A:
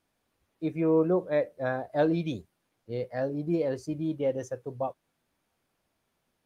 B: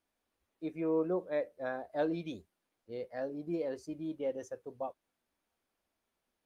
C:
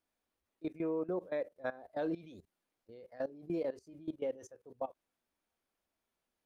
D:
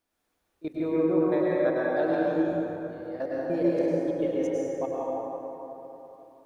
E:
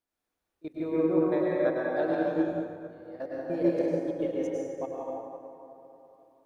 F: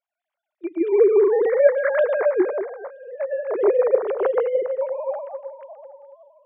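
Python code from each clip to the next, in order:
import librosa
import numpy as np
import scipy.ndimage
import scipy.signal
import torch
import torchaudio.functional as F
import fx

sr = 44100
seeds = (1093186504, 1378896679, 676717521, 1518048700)

y1 = fx.peak_eq(x, sr, hz=130.0, db=-13.0, octaves=0.59)
y1 = y1 * librosa.db_to_amplitude(-7.0)
y2 = fx.level_steps(y1, sr, step_db=18)
y2 = y2 * librosa.db_to_amplitude(2.0)
y3 = fx.rev_plate(y2, sr, seeds[0], rt60_s=3.6, hf_ratio=0.45, predelay_ms=90, drr_db=-7.0)
y3 = y3 * librosa.db_to_amplitude(4.5)
y4 = fx.upward_expand(y3, sr, threshold_db=-37.0, expansion=1.5)
y5 = fx.sine_speech(y4, sr)
y5 = y5 * librosa.db_to_amplitude(9.0)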